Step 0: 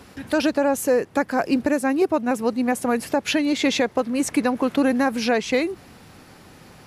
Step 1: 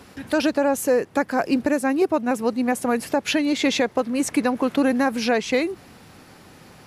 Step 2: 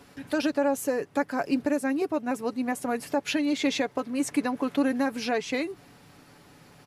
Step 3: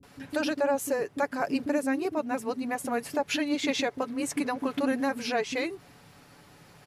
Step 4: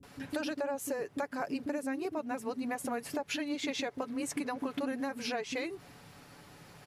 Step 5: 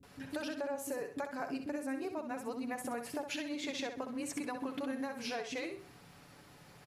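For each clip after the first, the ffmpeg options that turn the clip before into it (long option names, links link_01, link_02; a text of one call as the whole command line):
ffmpeg -i in.wav -af "lowshelf=frequency=60:gain=-5" out.wav
ffmpeg -i in.wav -af "aecho=1:1:7:0.42,volume=-7dB" out.wav
ffmpeg -i in.wav -filter_complex "[0:a]acrossover=split=290[link_01][link_02];[link_02]adelay=30[link_03];[link_01][link_03]amix=inputs=2:normalize=0" out.wav
ffmpeg -i in.wav -af "acompressor=threshold=-33dB:ratio=4" out.wav
ffmpeg -i in.wav -af "aecho=1:1:64|128|192|256:0.398|0.131|0.0434|0.0143,volume=-4dB" out.wav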